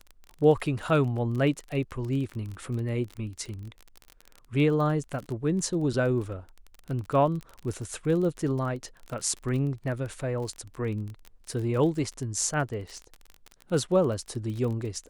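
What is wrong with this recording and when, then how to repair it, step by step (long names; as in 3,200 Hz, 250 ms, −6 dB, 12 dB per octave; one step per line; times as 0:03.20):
surface crackle 30 per second −33 dBFS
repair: click removal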